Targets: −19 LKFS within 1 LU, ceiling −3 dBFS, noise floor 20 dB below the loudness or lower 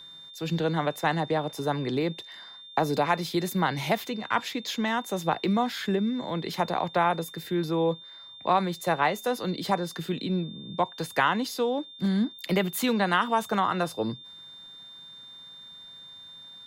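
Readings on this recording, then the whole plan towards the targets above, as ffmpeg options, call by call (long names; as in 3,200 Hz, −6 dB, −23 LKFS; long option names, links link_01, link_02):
interfering tone 3,600 Hz; level of the tone −44 dBFS; integrated loudness −28.0 LKFS; sample peak −9.5 dBFS; target loudness −19.0 LKFS
→ -af "bandreject=frequency=3600:width=30"
-af "volume=9dB,alimiter=limit=-3dB:level=0:latency=1"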